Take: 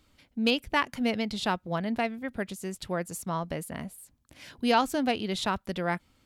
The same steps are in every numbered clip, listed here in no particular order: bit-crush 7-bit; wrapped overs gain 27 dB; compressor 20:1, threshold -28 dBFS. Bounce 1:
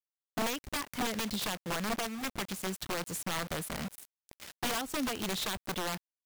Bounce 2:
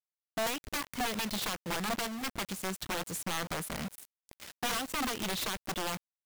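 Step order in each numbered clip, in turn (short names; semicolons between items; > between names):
bit-crush > compressor > wrapped overs; compressor > bit-crush > wrapped overs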